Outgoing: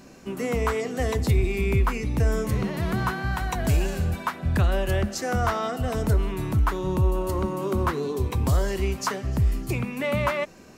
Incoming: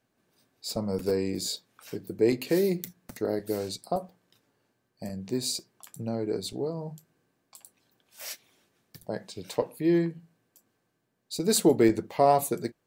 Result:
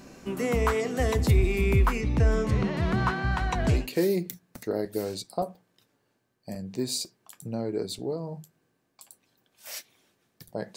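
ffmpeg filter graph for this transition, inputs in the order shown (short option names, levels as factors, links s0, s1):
-filter_complex "[0:a]asettb=1/sr,asplit=3[s0][s1][s2];[s0]atrim=end=2.014[s3];[s1]atrim=start=2.01:end=3.88,asetpts=PTS-STARTPTS,afade=t=in:d=0.004:c=qsin,afade=t=out:st=1.866:d=0.004:c=qsin,lowpass=5700[s4];[s2]atrim=start=3.876[s5];[s3][s4]acrossfade=d=0.004:c1=hsin:c2=qsin[s6];[s6][s5]acrossfade=d=0.004:c1=qsin:c2=hsin,apad=whole_dur=10.76,atrim=end=10.76,atrim=end=3.88,asetpts=PTS-STARTPTS[s7];[1:a]atrim=start=2.22:end=9.3,asetpts=PTS-STARTPTS[s8];[s7][s8]acrossfade=d=0.2:c1=tri:c2=tri"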